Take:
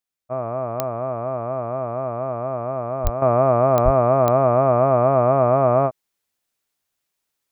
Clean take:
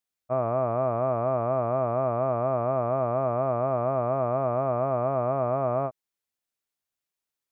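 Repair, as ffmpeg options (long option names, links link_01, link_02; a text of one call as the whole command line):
ffmpeg -i in.wav -filter_complex "[0:a]adeclick=threshold=4,asplit=3[link_01][link_02][link_03];[link_01]afade=type=out:start_time=3.03:duration=0.02[link_04];[link_02]highpass=frequency=140:width=0.5412,highpass=frequency=140:width=1.3066,afade=type=in:start_time=3.03:duration=0.02,afade=type=out:start_time=3.15:duration=0.02[link_05];[link_03]afade=type=in:start_time=3.15:duration=0.02[link_06];[link_04][link_05][link_06]amix=inputs=3:normalize=0,asplit=3[link_07][link_08][link_09];[link_07]afade=type=out:start_time=3.84:duration=0.02[link_10];[link_08]highpass=frequency=140:width=0.5412,highpass=frequency=140:width=1.3066,afade=type=in:start_time=3.84:duration=0.02,afade=type=out:start_time=3.96:duration=0.02[link_11];[link_09]afade=type=in:start_time=3.96:duration=0.02[link_12];[link_10][link_11][link_12]amix=inputs=3:normalize=0,asetnsamples=nb_out_samples=441:pad=0,asendcmd='3.22 volume volume -9.5dB',volume=0dB" out.wav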